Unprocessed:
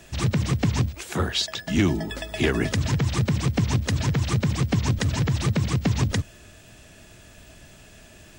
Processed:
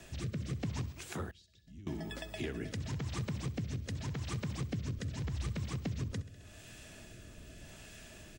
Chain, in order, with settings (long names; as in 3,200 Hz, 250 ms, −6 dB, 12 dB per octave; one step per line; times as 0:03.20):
0:05.24–0:05.66: parametric band 62 Hz +13.5 dB 0.62 octaves
repeating echo 66 ms, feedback 59%, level −16 dB
rotating-speaker cabinet horn 0.85 Hz
downward compressor 2 to 1, threshold −44 dBFS, peak gain reduction 14.5 dB
0:01.31–0:01.87: guitar amp tone stack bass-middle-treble 10-0-1
level −1.5 dB